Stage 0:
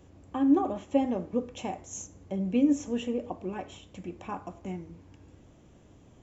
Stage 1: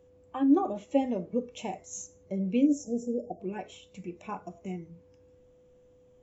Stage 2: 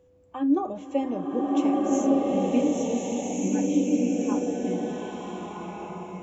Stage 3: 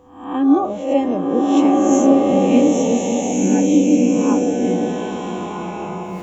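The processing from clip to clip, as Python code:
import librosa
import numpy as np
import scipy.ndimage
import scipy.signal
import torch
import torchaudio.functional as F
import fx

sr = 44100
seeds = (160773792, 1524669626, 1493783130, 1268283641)

y1 = fx.noise_reduce_blind(x, sr, reduce_db=11)
y1 = y1 + 10.0 ** (-58.0 / 20.0) * np.sin(2.0 * np.pi * 500.0 * np.arange(len(y1)) / sr)
y1 = fx.spec_erase(y1, sr, start_s=2.66, length_s=0.74, low_hz=850.0, high_hz=4900.0)
y2 = fx.rev_bloom(y1, sr, seeds[0], attack_ms=1540, drr_db=-5.0)
y3 = fx.spec_swells(y2, sr, rise_s=0.6)
y3 = F.gain(torch.from_numpy(y3), 8.0).numpy()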